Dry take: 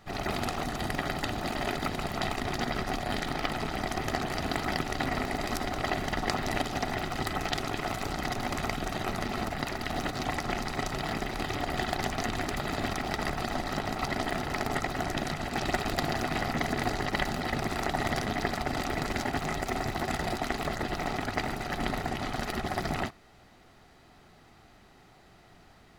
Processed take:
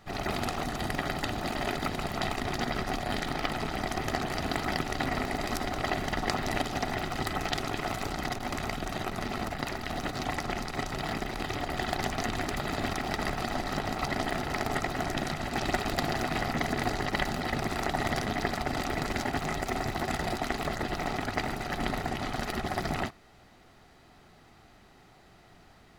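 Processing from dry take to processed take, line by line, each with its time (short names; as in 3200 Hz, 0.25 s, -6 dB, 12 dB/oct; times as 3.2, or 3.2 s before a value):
8.07–11.84 core saturation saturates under 300 Hz
12.4–16.44 echo 0.467 s -14 dB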